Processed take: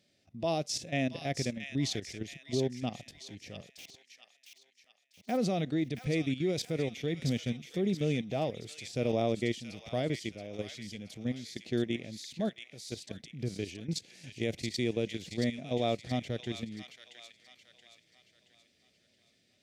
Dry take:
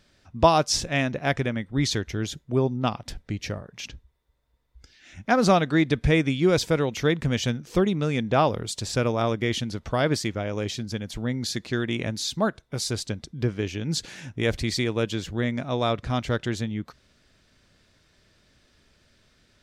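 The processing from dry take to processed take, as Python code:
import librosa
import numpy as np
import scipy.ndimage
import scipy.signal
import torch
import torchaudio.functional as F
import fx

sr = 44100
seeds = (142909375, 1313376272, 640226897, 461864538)

y = fx.delta_hold(x, sr, step_db=-34.5, at=(3.69, 5.36), fade=0.02)
y = scipy.signal.sosfilt(scipy.signal.butter(2, 140.0, 'highpass', fs=sr, output='sos'), y)
y = fx.band_shelf(y, sr, hz=1200.0, db=-12.5, octaves=1.1)
y = fx.level_steps(y, sr, step_db=14)
y = fx.hpss(y, sr, part='percussive', gain_db=-7)
y = fx.echo_wet_highpass(y, sr, ms=676, feedback_pct=43, hz=1700.0, wet_db=-5)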